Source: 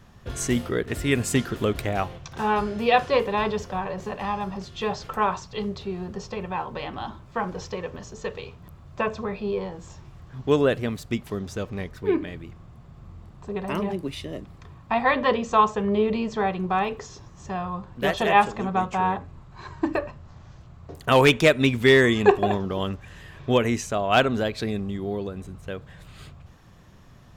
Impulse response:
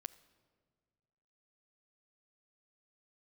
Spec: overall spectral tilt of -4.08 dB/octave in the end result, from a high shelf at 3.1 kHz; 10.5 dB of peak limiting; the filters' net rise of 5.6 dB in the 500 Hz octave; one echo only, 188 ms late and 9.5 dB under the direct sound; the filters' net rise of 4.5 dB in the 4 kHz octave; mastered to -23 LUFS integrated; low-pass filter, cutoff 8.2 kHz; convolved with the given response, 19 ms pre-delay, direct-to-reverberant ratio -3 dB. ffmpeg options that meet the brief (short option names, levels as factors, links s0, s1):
-filter_complex "[0:a]lowpass=8200,equalizer=f=500:t=o:g=7,highshelf=f=3100:g=-4.5,equalizer=f=4000:t=o:g=9,alimiter=limit=0.316:level=0:latency=1,aecho=1:1:188:0.335,asplit=2[s0][s1];[1:a]atrim=start_sample=2205,adelay=19[s2];[s1][s2]afir=irnorm=-1:irlink=0,volume=2.37[s3];[s0][s3]amix=inputs=2:normalize=0,volume=0.596"